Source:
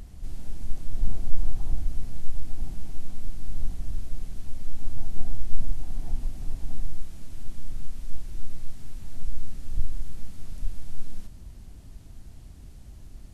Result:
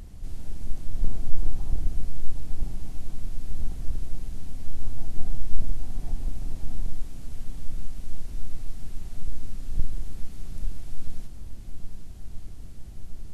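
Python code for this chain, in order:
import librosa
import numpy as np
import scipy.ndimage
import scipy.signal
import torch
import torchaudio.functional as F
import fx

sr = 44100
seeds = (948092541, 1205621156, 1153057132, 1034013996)

y = fx.octave_divider(x, sr, octaves=2, level_db=-3.0)
y = fx.echo_swing(y, sr, ms=1278, ratio=1.5, feedback_pct=70, wet_db=-12.5)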